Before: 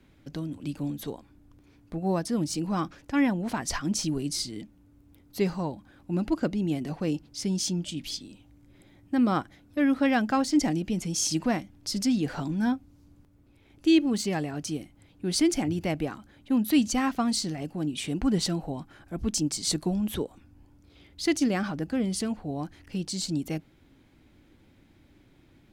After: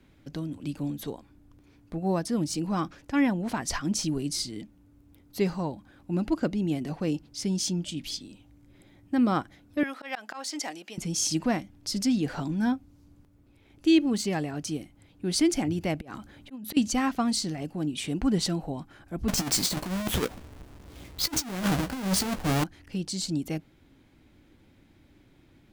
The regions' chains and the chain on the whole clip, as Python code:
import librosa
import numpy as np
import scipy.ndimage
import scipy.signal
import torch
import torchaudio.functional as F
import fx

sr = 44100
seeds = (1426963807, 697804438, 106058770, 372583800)

y = fx.chain(x, sr, fx.highpass(hz=720.0, slope=12),
    fx.auto_swell(attack_ms=137.0), at=(9.83, 10.98))
y = fx.chain(y, sr, fx.auto_swell(attack_ms=469.0),
    fx.over_compress(threshold_db=-41.0, ratio=-1.0), at=(16.01, 16.77))
y = fx.chain(y, sr, fx.halfwave_hold(),
    fx.over_compress(threshold_db=-27.0, ratio=-0.5),
    fx.doubler(ms=16.0, db=-9.5), at=(19.28, 22.64))